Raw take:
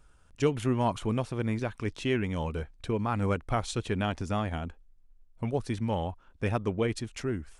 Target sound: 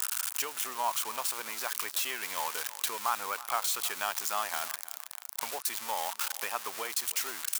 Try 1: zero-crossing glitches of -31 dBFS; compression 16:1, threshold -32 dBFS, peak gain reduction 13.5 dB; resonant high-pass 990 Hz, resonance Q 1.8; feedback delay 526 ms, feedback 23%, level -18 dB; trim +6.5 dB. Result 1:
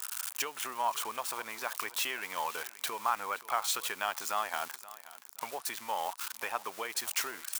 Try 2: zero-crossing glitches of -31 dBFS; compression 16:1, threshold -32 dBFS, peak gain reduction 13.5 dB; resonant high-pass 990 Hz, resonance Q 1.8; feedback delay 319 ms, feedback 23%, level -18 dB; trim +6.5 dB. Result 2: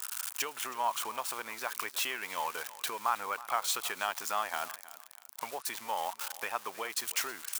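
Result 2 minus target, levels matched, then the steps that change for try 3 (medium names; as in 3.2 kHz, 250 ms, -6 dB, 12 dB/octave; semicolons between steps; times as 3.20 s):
zero-crossing glitches: distortion -9 dB
change: zero-crossing glitches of -21.5 dBFS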